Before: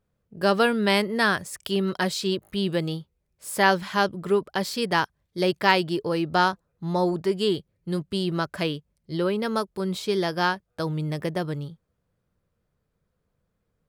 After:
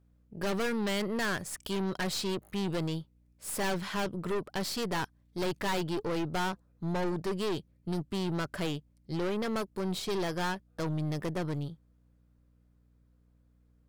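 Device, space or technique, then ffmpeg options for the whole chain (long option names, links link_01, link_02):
valve amplifier with mains hum: -af "aeval=exprs='(tanh(28.2*val(0)+0.5)-tanh(0.5))/28.2':channel_layout=same,aeval=exprs='val(0)+0.000631*(sin(2*PI*60*n/s)+sin(2*PI*2*60*n/s)/2+sin(2*PI*3*60*n/s)/3+sin(2*PI*4*60*n/s)/4+sin(2*PI*5*60*n/s)/5)':channel_layout=same"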